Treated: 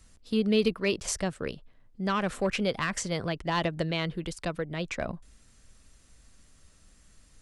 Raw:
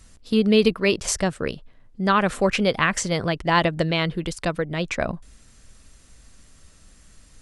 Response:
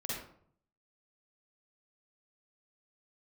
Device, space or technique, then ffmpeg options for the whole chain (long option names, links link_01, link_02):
one-band saturation: -filter_complex "[0:a]acrossover=split=480|2800[link_01][link_02][link_03];[link_02]asoftclip=type=tanh:threshold=-16.5dB[link_04];[link_01][link_04][link_03]amix=inputs=3:normalize=0,volume=-7dB"